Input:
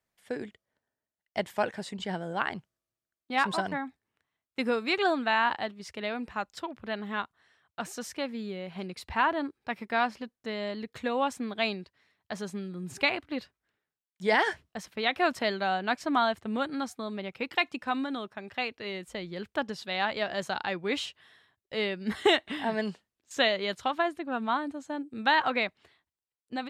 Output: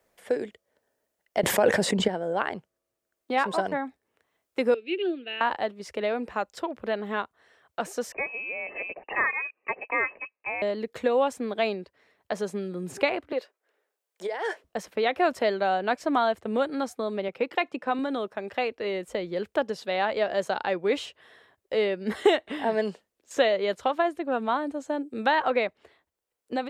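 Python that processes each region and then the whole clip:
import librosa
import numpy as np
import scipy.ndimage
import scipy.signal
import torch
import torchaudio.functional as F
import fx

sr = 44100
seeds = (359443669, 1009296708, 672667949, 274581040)

y = fx.chain(x, sr, fx.bass_treble(bass_db=6, treble_db=3),
    fx.env_flatten(amount_pct=100), at=(1.43, 2.08))
y = fx.chain(y, sr, fx.dynamic_eq(hz=1300.0, q=1.0, threshold_db=-38.0, ratio=4.0, max_db=6),
    fx.double_bandpass(hz=990.0, octaves=3.0), at=(4.74, 5.41))
y = fx.chain(y, sr, fx.notch_comb(f0_hz=1400.0),
    fx.freq_invert(carrier_hz=2800), at=(8.12, 10.62))
y = fx.chain(y, sr, fx.over_compress(threshold_db=-31.0, ratio=-1.0),
    fx.ladder_highpass(hz=320.0, resonance_pct=20), at=(13.32, 14.64))
y = fx.chain(y, sr, fx.highpass(hz=120.0, slope=12),
    fx.high_shelf(hz=5600.0, db=-7.0), at=(17.28, 17.99))
y = fx.graphic_eq_10(y, sr, hz=(125, 500, 4000), db=(-5, 10, -3))
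y = fx.band_squash(y, sr, depth_pct=40)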